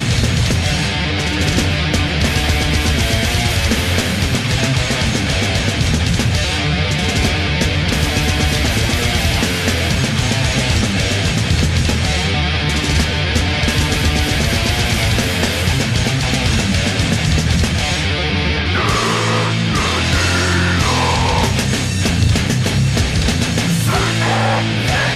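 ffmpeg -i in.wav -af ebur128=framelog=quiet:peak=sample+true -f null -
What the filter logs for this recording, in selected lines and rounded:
Integrated loudness:
  I:         -15.5 LUFS
  Threshold: -25.5 LUFS
Loudness range:
  LRA:         0.8 LU
  Threshold: -35.5 LUFS
  LRA low:   -15.8 LUFS
  LRA high:  -15.0 LUFS
Sample peak:
  Peak:       -4.2 dBFS
True peak:
  Peak:       -4.1 dBFS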